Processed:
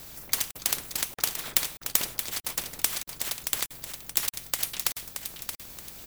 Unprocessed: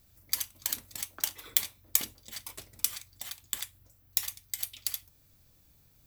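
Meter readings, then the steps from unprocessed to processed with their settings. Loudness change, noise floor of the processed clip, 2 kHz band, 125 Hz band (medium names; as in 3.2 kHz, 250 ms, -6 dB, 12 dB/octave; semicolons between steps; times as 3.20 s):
+4.0 dB, -50 dBFS, +8.0 dB, +7.5 dB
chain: cycle switcher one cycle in 2, inverted; on a send: feedback delay 625 ms, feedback 18%, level -15 dB; on the sum: crackling interface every 0.63 s, samples 2048, zero, from 0.51 s; spectrum-flattening compressor 2:1; trim +1.5 dB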